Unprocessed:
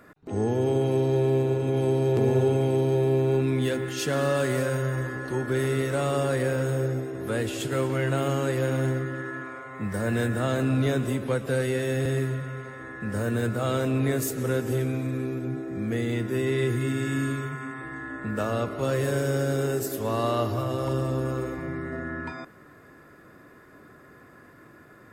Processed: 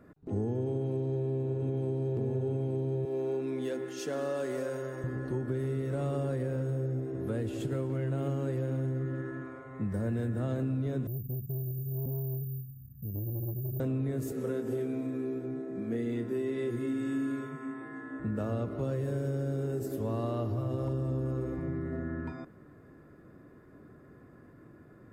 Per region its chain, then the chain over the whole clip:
3.05–5.04 HPF 360 Hz + bell 5900 Hz +5.5 dB 0.5 oct
11.07–13.8 inverse Chebyshev band-stop 320–4400 Hz + careless resampling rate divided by 3×, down filtered, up zero stuff + core saturation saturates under 1000 Hz
14.32–18.2 HPF 240 Hz + doubler 26 ms -6 dB
whole clip: tilt shelf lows +8 dB, about 670 Hz; compressor, threshold -22 dBFS; gain -6.5 dB

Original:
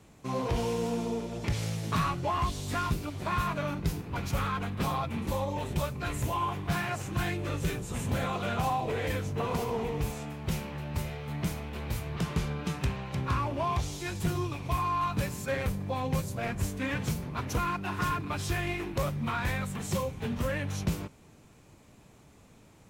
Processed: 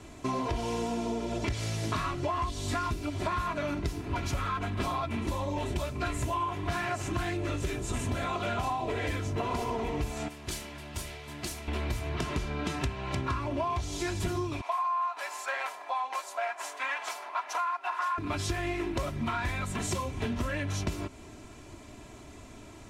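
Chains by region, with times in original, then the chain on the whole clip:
10.28–11.68 pre-emphasis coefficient 0.8 + Doppler distortion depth 0.85 ms
14.61–18.18 ladder high-pass 670 Hz, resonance 45% + bell 1300 Hz +5.5 dB 2.6 oct
whole clip: comb 3 ms, depth 64%; compressor, threshold -37 dBFS; LPF 9800 Hz 12 dB/oct; gain +8 dB

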